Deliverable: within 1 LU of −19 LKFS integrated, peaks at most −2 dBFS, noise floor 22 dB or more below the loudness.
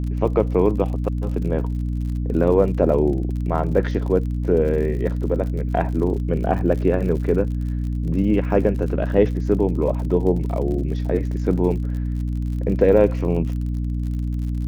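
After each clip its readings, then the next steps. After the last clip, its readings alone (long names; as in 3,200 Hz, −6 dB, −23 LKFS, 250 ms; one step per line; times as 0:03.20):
crackle rate 57 per second; mains hum 60 Hz; hum harmonics up to 300 Hz; level of the hum −21 dBFS; integrated loudness −21.5 LKFS; sample peak −3.0 dBFS; target loudness −19.0 LKFS
→ click removal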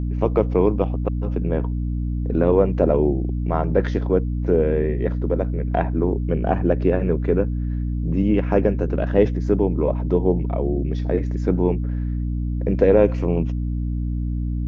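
crackle rate 0 per second; mains hum 60 Hz; hum harmonics up to 300 Hz; level of the hum −21 dBFS
→ hum removal 60 Hz, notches 5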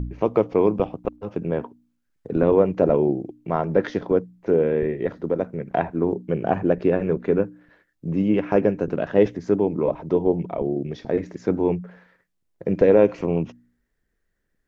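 mains hum none found; integrated loudness −22.5 LKFS; sample peak −4.0 dBFS; target loudness −19.0 LKFS
→ level +3.5 dB
brickwall limiter −2 dBFS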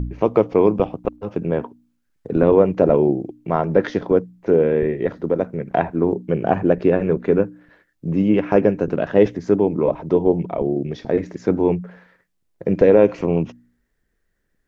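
integrated loudness −19.5 LKFS; sample peak −2.0 dBFS; background noise floor −70 dBFS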